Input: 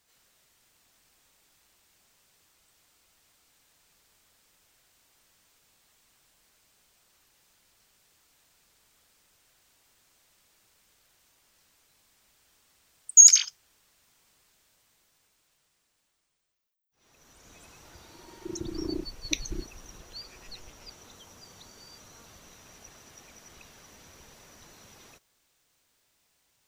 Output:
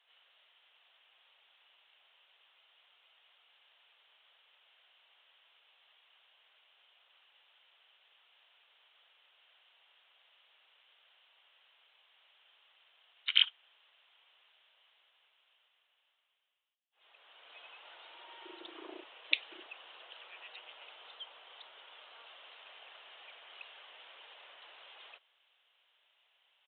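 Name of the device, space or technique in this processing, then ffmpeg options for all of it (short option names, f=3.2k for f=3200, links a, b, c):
musical greeting card: -af "aresample=8000,aresample=44100,highpass=f=560:w=0.5412,highpass=f=560:w=1.3066,equalizer=f=3k:t=o:w=0.43:g=10"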